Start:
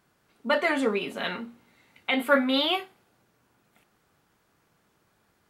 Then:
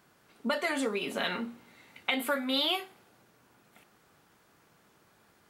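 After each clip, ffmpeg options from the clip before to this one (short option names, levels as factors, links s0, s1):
-filter_complex "[0:a]lowshelf=f=88:g=-8,acrossover=split=4600[s0][s1];[s0]acompressor=threshold=0.0224:ratio=6[s2];[s2][s1]amix=inputs=2:normalize=0,volume=1.68"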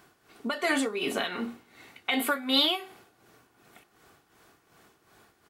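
-af "aecho=1:1:2.7:0.34,tremolo=f=2.7:d=0.67,volume=2"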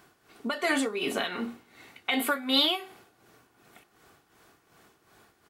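-af anull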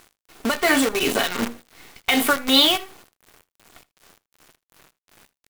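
-af "acrusher=bits=6:dc=4:mix=0:aa=0.000001,aecho=1:1:80:0.0841,volume=2.51"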